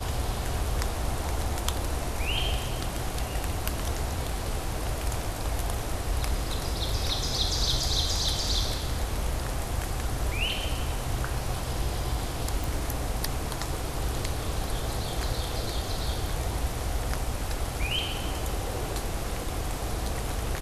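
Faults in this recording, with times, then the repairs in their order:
0:12.64: click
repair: click removal

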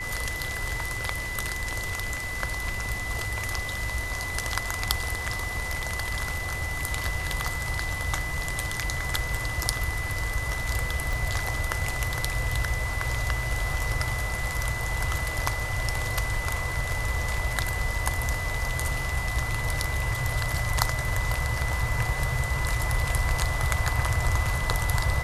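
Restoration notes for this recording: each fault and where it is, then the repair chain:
whistle 2,000 Hz −32 dBFS
0:11.13: click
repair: click removal
notch filter 2,000 Hz, Q 30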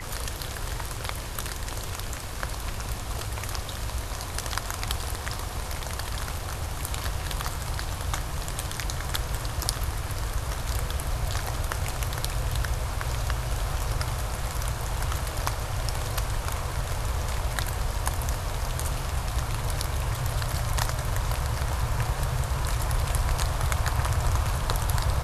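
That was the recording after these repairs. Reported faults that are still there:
0:11.13: click

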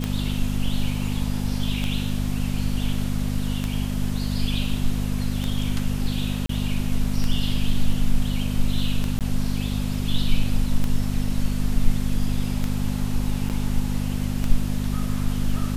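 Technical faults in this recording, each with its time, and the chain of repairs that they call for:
mains hum 50 Hz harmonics 5 −26 dBFS
scratch tick 33 1/3 rpm −12 dBFS
0:06.46–0:06.49: drop-out 33 ms
0:09.19–0:09.21: drop-out 18 ms
0:13.49–0:13.50: drop-out 8.5 ms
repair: click removal
hum removal 50 Hz, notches 5
repair the gap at 0:06.46, 33 ms
repair the gap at 0:09.19, 18 ms
repair the gap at 0:13.49, 8.5 ms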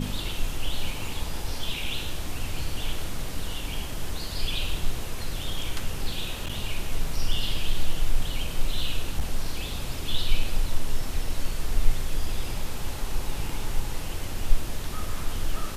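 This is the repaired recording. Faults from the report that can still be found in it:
none of them is left

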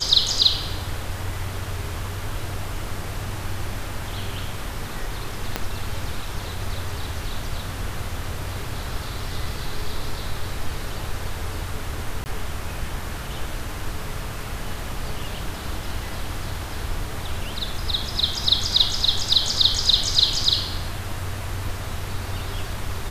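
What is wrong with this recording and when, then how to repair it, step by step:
0:05.56: click −8 dBFS
0:12.24–0:12.26: drop-out 19 ms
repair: click removal
repair the gap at 0:12.24, 19 ms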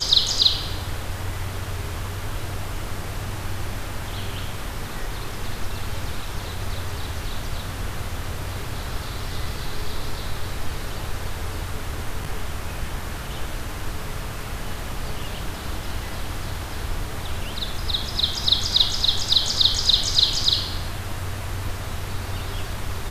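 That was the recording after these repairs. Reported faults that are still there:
0:05.56: click

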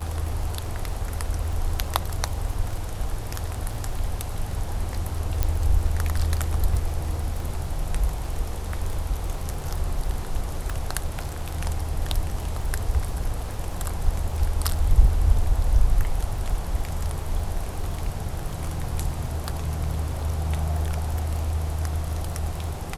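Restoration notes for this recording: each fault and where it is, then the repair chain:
surface crackle 21 per second −31 dBFS
0:05.43: click −9 dBFS
0:10.70: click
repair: click removal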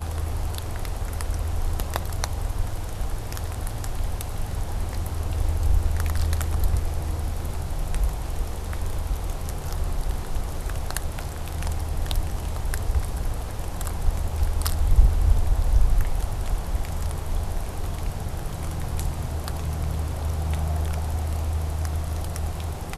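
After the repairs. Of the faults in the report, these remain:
0:05.43: click

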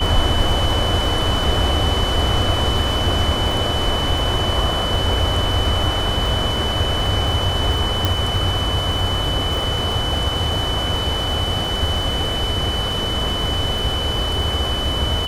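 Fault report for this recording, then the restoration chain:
surface crackle 42 per second −26 dBFS
whistle 3,000 Hz −23 dBFS
0:08.05: click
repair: click removal
notch filter 3,000 Hz, Q 30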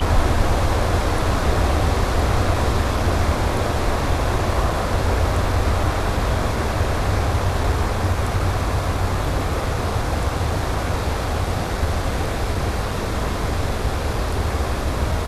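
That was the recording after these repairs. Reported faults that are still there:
none of them is left

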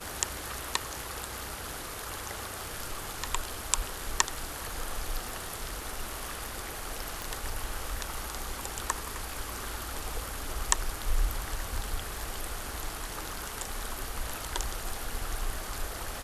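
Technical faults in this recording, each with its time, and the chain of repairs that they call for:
surface crackle 20 per second −41 dBFS
0:05.29: click
0:07.22: click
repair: click removal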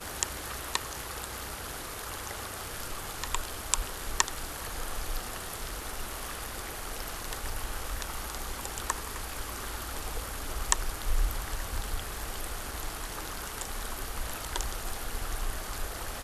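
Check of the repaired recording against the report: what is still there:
none of them is left

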